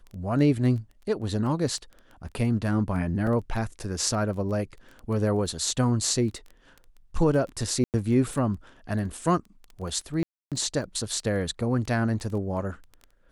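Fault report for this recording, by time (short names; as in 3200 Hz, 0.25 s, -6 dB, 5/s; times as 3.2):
crackle 11/s -34 dBFS
3.27 gap 2.6 ms
7.84–7.94 gap 98 ms
10.23–10.52 gap 0.287 s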